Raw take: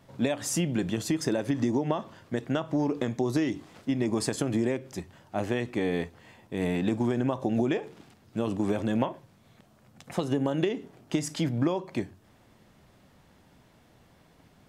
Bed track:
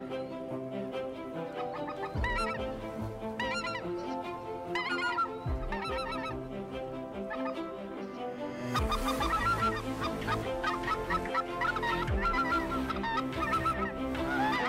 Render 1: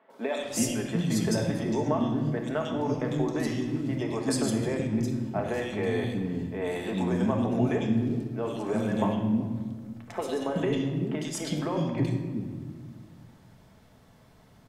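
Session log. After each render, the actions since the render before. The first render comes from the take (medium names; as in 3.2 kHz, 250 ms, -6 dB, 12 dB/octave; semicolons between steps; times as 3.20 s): three bands offset in time mids, highs, lows 100/380 ms, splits 310/2500 Hz; simulated room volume 1900 m³, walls mixed, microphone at 1.5 m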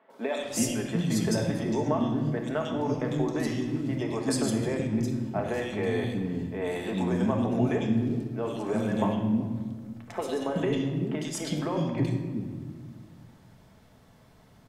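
no audible change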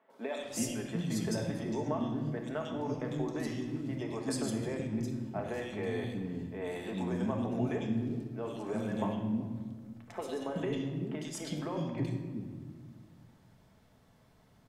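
trim -7 dB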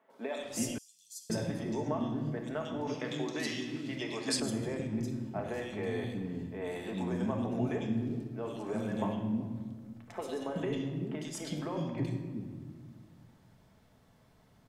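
0.78–1.30 s: inverse Chebyshev high-pass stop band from 1.6 kHz, stop band 60 dB; 2.87–4.40 s: frequency weighting D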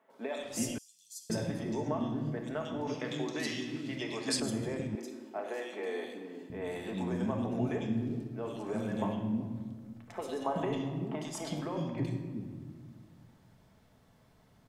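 4.95–6.50 s: high-pass 310 Hz 24 dB/octave; 10.44–11.61 s: high-order bell 880 Hz +10 dB 1.1 oct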